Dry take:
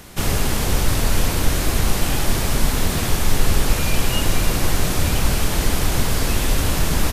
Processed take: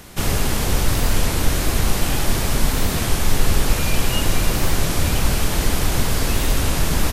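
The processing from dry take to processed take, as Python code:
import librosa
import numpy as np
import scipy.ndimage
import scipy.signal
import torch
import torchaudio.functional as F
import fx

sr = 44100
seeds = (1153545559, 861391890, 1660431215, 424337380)

y = fx.record_warp(x, sr, rpm=33.33, depth_cents=100.0)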